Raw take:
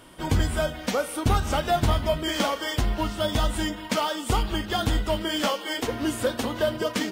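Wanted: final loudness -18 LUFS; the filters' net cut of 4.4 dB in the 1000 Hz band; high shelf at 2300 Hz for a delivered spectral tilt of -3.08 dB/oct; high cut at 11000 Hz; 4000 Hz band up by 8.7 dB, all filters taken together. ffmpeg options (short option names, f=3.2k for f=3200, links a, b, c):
-af "lowpass=11k,equalizer=f=1k:t=o:g=-8,highshelf=f=2.3k:g=7.5,equalizer=f=4k:t=o:g=5.5,volume=5.5dB"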